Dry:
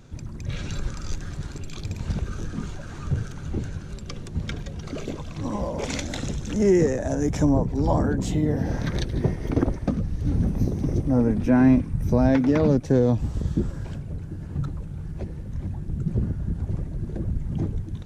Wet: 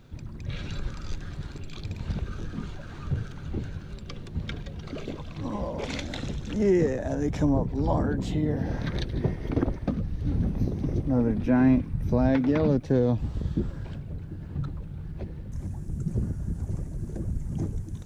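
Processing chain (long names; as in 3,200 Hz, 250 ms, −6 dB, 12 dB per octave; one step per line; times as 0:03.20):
high shelf with overshoot 5,100 Hz −6 dB, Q 1.5, from 0:15.52 +8 dB
bit-depth reduction 12 bits, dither none
level −3.5 dB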